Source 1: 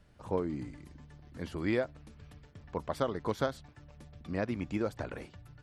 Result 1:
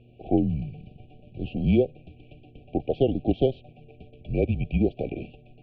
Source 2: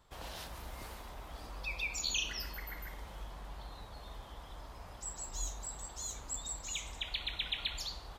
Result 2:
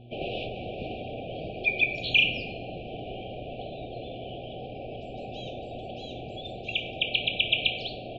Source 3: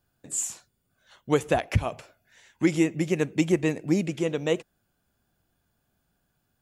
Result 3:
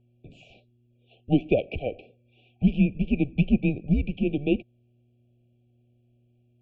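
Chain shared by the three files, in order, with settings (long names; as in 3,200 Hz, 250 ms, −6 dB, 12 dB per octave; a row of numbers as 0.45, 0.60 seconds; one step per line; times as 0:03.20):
single-sideband voice off tune −140 Hz 180–3,100 Hz
linear-phase brick-wall band-stop 790–2,300 Hz
hum with harmonics 120 Hz, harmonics 3, −66 dBFS −7 dB per octave
normalise the peak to −9 dBFS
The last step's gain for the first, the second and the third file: +10.5, +17.0, +2.0 decibels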